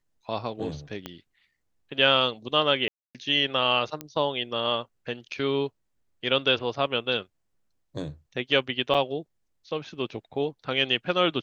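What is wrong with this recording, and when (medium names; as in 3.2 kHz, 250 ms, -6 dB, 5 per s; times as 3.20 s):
1.06 s: pop -19 dBFS
2.88–3.15 s: dropout 267 ms
4.01 s: pop -17 dBFS
8.94–8.95 s: dropout 6.4 ms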